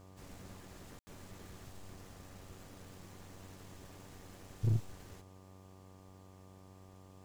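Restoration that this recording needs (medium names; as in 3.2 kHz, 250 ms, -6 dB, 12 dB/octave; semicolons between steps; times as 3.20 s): clip repair -25.5 dBFS; de-hum 94.5 Hz, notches 12; band-stop 1.2 kHz, Q 30; room tone fill 0.99–1.07 s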